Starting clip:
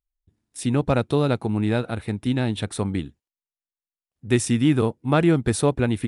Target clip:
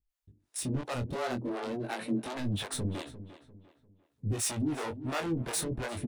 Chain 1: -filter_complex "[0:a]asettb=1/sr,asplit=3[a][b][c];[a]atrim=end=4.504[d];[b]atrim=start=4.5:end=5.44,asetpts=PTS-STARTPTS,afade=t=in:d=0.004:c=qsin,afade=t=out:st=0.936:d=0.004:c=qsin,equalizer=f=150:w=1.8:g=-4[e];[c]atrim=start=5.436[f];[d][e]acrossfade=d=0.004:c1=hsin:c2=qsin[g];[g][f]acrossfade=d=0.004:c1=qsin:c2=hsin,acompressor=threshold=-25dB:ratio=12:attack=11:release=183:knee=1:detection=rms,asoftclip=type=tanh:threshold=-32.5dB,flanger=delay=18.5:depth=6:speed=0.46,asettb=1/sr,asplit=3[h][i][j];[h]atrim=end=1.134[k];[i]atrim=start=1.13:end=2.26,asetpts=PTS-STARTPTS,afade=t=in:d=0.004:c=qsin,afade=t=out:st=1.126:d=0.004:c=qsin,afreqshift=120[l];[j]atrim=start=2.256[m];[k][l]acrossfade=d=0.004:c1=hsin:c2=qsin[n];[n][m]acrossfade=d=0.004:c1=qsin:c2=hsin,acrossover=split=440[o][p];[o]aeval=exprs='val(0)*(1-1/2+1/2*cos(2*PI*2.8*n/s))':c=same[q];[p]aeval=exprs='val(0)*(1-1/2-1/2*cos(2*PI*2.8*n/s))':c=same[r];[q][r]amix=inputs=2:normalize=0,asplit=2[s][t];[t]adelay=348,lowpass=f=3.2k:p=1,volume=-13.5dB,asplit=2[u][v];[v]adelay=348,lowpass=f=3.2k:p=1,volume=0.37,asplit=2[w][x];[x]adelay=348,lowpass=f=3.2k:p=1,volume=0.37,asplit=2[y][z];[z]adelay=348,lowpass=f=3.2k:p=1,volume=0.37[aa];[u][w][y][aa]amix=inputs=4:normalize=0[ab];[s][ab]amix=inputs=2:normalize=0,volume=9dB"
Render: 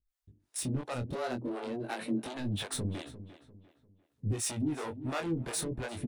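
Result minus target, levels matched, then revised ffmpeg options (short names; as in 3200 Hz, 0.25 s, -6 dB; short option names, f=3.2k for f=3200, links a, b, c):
compressor: peak gain reduction +6 dB
-filter_complex "[0:a]asettb=1/sr,asplit=3[a][b][c];[a]atrim=end=4.504[d];[b]atrim=start=4.5:end=5.44,asetpts=PTS-STARTPTS,afade=t=in:d=0.004:c=qsin,afade=t=out:st=0.936:d=0.004:c=qsin,equalizer=f=150:w=1.8:g=-4[e];[c]atrim=start=5.436[f];[d][e]acrossfade=d=0.004:c1=hsin:c2=qsin[g];[g][f]acrossfade=d=0.004:c1=qsin:c2=hsin,acompressor=threshold=-18.5dB:ratio=12:attack=11:release=183:knee=1:detection=rms,asoftclip=type=tanh:threshold=-32.5dB,flanger=delay=18.5:depth=6:speed=0.46,asettb=1/sr,asplit=3[h][i][j];[h]atrim=end=1.134[k];[i]atrim=start=1.13:end=2.26,asetpts=PTS-STARTPTS,afade=t=in:d=0.004:c=qsin,afade=t=out:st=1.126:d=0.004:c=qsin,afreqshift=120[l];[j]atrim=start=2.256[m];[k][l]acrossfade=d=0.004:c1=hsin:c2=qsin[n];[n][m]acrossfade=d=0.004:c1=qsin:c2=hsin,acrossover=split=440[o][p];[o]aeval=exprs='val(0)*(1-1/2+1/2*cos(2*PI*2.8*n/s))':c=same[q];[p]aeval=exprs='val(0)*(1-1/2-1/2*cos(2*PI*2.8*n/s))':c=same[r];[q][r]amix=inputs=2:normalize=0,asplit=2[s][t];[t]adelay=348,lowpass=f=3.2k:p=1,volume=-13.5dB,asplit=2[u][v];[v]adelay=348,lowpass=f=3.2k:p=1,volume=0.37,asplit=2[w][x];[x]adelay=348,lowpass=f=3.2k:p=1,volume=0.37,asplit=2[y][z];[z]adelay=348,lowpass=f=3.2k:p=1,volume=0.37[aa];[u][w][y][aa]amix=inputs=4:normalize=0[ab];[s][ab]amix=inputs=2:normalize=0,volume=9dB"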